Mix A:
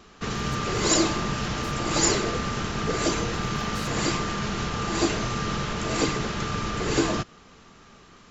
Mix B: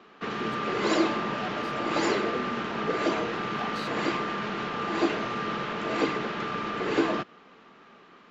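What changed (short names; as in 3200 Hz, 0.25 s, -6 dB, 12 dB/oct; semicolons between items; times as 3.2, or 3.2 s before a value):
speech +9.5 dB; master: add three-band isolator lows -24 dB, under 190 Hz, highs -24 dB, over 3600 Hz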